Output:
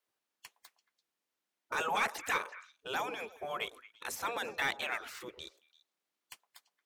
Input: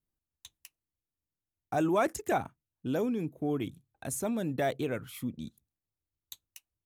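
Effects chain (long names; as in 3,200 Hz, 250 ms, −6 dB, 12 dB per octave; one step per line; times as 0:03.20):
gate on every frequency bin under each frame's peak −15 dB weak
mid-hump overdrive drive 18 dB, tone 3,200 Hz, clips at −18 dBFS
echo through a band-pass that steps 113 ms, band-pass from 670 Hz, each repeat 1.4 octaves, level −12 dB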